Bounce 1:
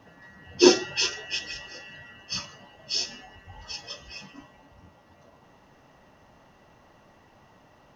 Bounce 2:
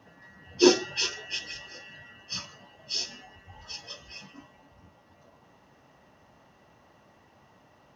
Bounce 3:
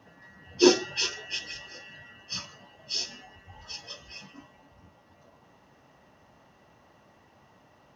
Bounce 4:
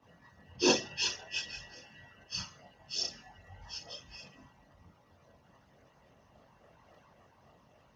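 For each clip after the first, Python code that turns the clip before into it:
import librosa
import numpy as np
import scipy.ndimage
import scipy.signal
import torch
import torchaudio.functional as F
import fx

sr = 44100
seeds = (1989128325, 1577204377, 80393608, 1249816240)

y1 = scipy.signal.sosfilt(scipy.signal.butter(2, 59.0, 'highpass', fs=sr, output='sos'), x)
y1 = F.gain(torch.from_numpy(y1), -2.5).numpy()
y2 = y1
y3 = fx.doubler(y2, sr, ms=42.0, db=-7)
y3 = fx.chorus_voices(y3, sr, voices=6, hz=0.6, base_ms=23, depth_ms=1.1, mix_pct=60)
y3 = fx.hpss(y3, sr, part='percussive', gain_db=8)
y3 = F.gain(torch.from_numpy(y3), -7.5).numpy()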